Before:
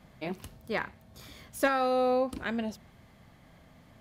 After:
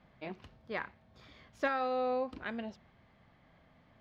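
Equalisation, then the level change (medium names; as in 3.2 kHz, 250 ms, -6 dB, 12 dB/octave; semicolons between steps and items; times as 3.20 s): dynamic bell 7.4 kHz, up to +4 dB, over -52 dBFS, Q 0.92; distance through air 220 m; bass shelf 480 Hz -6 dB; -3.0 dB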